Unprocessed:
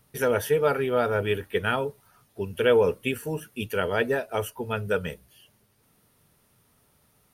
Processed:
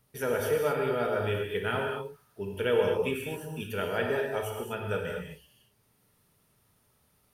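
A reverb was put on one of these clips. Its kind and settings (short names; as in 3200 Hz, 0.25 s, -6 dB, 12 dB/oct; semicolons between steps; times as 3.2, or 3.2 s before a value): non-linear reverb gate 0.27 s flat, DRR 0 dB; gain -7 dB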